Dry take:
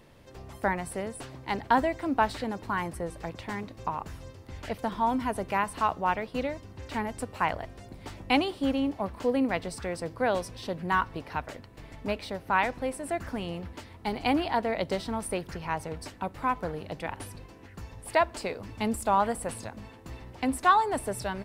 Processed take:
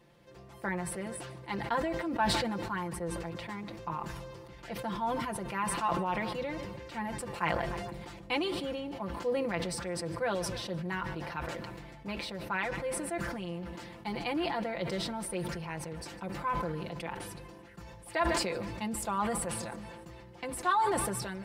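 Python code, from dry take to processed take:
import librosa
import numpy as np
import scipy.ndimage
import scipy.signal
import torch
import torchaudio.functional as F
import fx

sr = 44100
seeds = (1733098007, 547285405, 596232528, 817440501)

p1 = scipy.signal.sosfilt(scipy.signal.butter(2, 51.0, 'highpass', fs=sr, output='sos'), x)
p2 = fx.high_shelf(p1, sr, hz=8900.0, db=-4.0)
p3 = p2 + 0.84 * np.pad(p2, (int(5.8 * sr / 1000.0), 0))[:len(p2)]
p4 = fx.dynamic_eq(p3, sr, hz=710.0, q=3.6, threshold_db=-41.0, ratio=4.0, max_db=-4)
p5 = p4 + fx.echo_feedback(p4, sr, ms=151, feedback_pct=59, wet_db=-22.0, dry=0)
p6 = fx.sustainer(p5, sr, db_per_s=27.0)
y = F.gain(torch.from_numpy(p6), -8.0).numpy()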